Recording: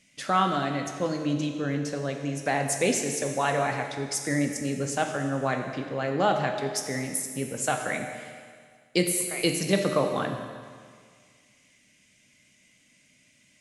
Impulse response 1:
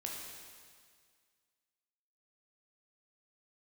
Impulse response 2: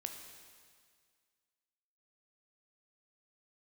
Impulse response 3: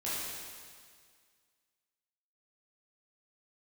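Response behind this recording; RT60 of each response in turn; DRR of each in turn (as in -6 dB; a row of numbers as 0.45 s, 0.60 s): 2; 1.9 s, 1.9 s, 1.9 s; -2.0 dB, 4.0 dB, -10.5 dB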